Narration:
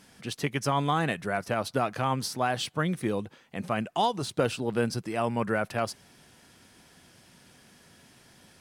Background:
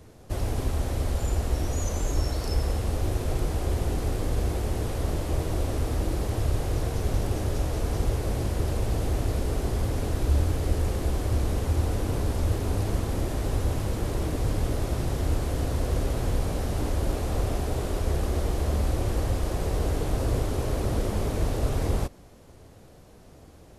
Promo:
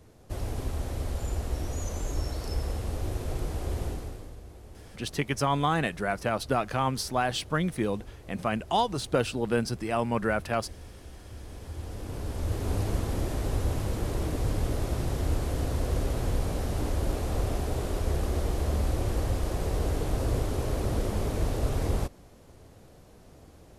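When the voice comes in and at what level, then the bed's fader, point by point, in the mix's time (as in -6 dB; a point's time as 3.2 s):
4.75 s, +0.5 dB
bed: 3.86 s -5 dB
4.41 s -20 dB
11.25 s -20 dB
12.72 s -2 dB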